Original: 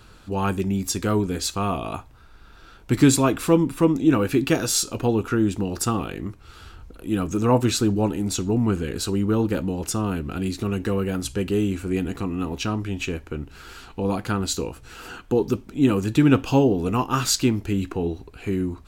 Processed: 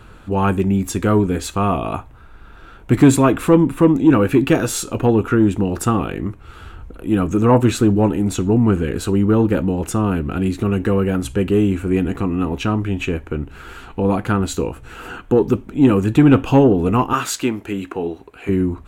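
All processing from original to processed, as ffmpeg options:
-filter_complex "[0:a]asettb=1/sr,asplit=3[a][b][c];[a]atrim=end=17.134[d];[b]atrim=start=17.13:end=18.49,asetpts=PTS-STARTPTS,afade=t=in:d=0.004:c=qsin,afade=t=out:st=1.356:d=0.004:c=qsin,highpass=67,equalizer=f=92:w=0.45:g=-14.5[e];[c]atrim=start=18.486[f];[d][e]acrossfade=d=0.004:c1=hsin:c2=qsin[g];[g][f]acrossfade=d=0.004:c1=qsin:c2=hsin,highshelf=f=8.8k:g=-9.5,acontrast=84,equalizer=f=4.9k:t=o:w=0.9:g=-12"

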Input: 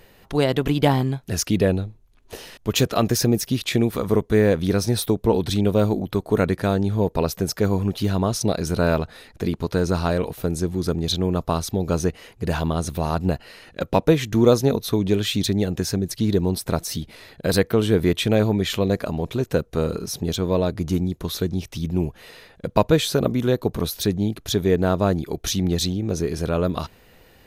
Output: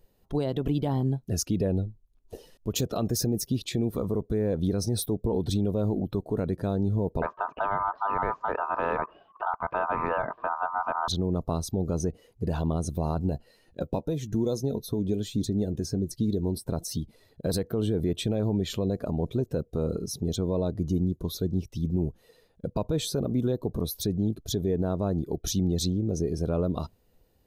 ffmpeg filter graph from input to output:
-filter_complex "[0:a]asettb=1/sr,asplit=3[a][b][c];[a]atrim=end=7.224[d];[b]atrim=start=7.22:end=11.08,asetpts=PTS-STARTPTS,afade=t=in:d=0.004:c=qsin,afade=t=out:st=3.856:d=0.004:c=qsin,lowpass=f=1.9k:w=0.5412,lowpass=f=1.9k:w=1.3066,aeval=exprs='val(0)*sin(2*PI*1100*n/s)':c=same,acontrast=86[e];[c]atrim=start=11.076[f];[d][e]acrossfade=d=0.004:c1=hsin:c2=qsin[g];[g][f]acrossfade=d=0.004:c1=qsin:c2=hsin,asettb=1/sr,asplit=3[h][i][j];[h]atrim=end=13.174[k];[i]atrim=start=13.17:end=16.7,asetpts=PTS-STARTPTS,afade=t=in:d=0.004:c=qsin,afade=t=out:st=3.526:d=0.004:c=qsin,bandreject=f=1.2k:w=11,asplit=2[l][m];[m]adelay=14,volume=-13dB[n];[l][n]amix=inputs=2:normalize=0,atrim=end_sample=155673,acrossover=split=1800|4000[o][p][q];[o]acompressor=threshold=-20dB:ratio=4[r];[p]acompressor=threshold=-44dB:ratio=4[s];[q]acompressor=threshold=-32dB:ratio=4[t];[r][s][t]amix=inputs=3:normalize=0[u];[j]atrim=start=16.696[v];[k][u]acrossfade=d=0.004:c1=hsin:c2=qsin[w];[w][v]acrossfade=d=0.004:c1=qsin:c2=hsin,afftdn=nr=12:nf=-36,equalizer=f=2k:t=o:w=1.8:g=-12.5,alimiter=limit=-15.5dB:level=0:latency=1:release=56,volume=-2dB"

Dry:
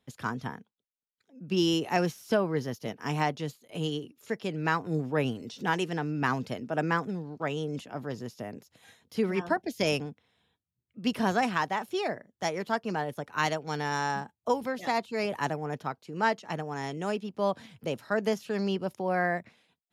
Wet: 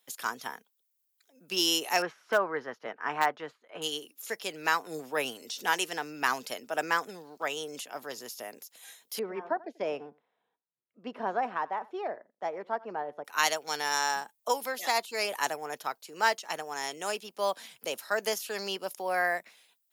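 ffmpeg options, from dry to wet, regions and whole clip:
-filter_complex "[0:a]asettb=1/sr,asplit=3[a][b][c];[a]atrim=end=2.024[d];[b]atrim=start=2.02:end=3.82,asetpts=PTS-STARTPTS,afade=t=in:d=0.004:c=qsin,afade=t=out:st=1.796:d=0.004:c=qsin,lowpass=f=1.5k:t=q:w=2,asoftclip=type=hard:threshold=-15.5dB[e];[c]atrim=start=3.816[f];[d][e]acrossfade=d=0.004:c1=hsin:c2=qsin[g];[g][f]acrossfade=d=0.004:c1=qsin:c2=hsin,asettb=1/sr,asplit=3[h][i][j];[h]atrim=end=9.194[k];[i]atrim=start=9.19:end=13.25,asetpts=PTS-STARTPTS,afade=t=in:d=0.004:c=qsin,afade=t=out:st=4.056:d=0.004:c=qsin,lowpass=1k,aecho=1:1:88:0.0794,atrim=end_sample=179046[l];[j]atrim=start=13.246[m];[k][l]acrossfade=d=0.004:c1=hsin:c2=qsin[n];[n][m]acrossfade=d=0.004:c1=qsin:c2=hsin,highpass=520,aemphasis=mode=production:type=75fm,volume=1dB"

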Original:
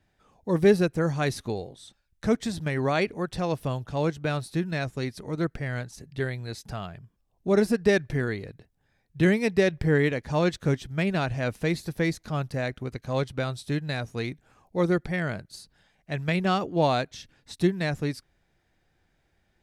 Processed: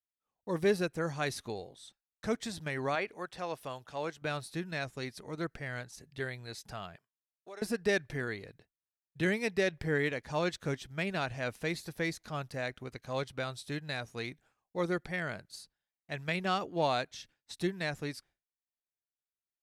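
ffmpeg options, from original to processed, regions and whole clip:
-filter_complex "[0:a]asettb=1/sr,asplit=3[a][b][c];[a]atrim=end=2.954[d];[b]atrim=start=2.95:end=4.22,asetpts=PTS-STARTPTS,afade=t=in:d=0.004:c=qsin,afade=t=out:st=1.266:d=0.004:c=qsin,acrossover=split=2700[e][f];[f]acompressor=threshold=-45dB:ratio=4:attack=1:release=60[g];[e][g]amix=inputs=2:normalize=0,lowshelf=f=250:g=-11.5[h];[c]atrim=start=4.216[i];[d][h]acrossfade=d=0.004:c1=hsin:c2=qsin[j];[j][i]acrossfade=d=0.004:c1=qsin:c2=hsin,asettb=1/sr,asplit=3[k][l][m];[k]atrim=end=6.964[n];[l]atrim=start=6.96:end=7.62,asetpts=PTS-STARTPTS,afade=t=in:d=0.004:c=qsin,afade=t=out:st=0.656:d=0.004:c=qsin,highpass=600,acompressor=threshold=-40dB:ratio=3:attack=3.2:release=140:knee=1:detection=peak[o];[m]atrim=start=7.616[p];[n][o]acrossfade=d=0.004:c1=hsin:c2=qsin[q];[q][p]acrossfade=d=0.004:c1=qsin:c2=hsin,acontrast=24,agate=range=-33dB:threshold=-42dB:ratio=3:detection=peak,lowshelf=f=430:g=-9,volume=-8.5dB"

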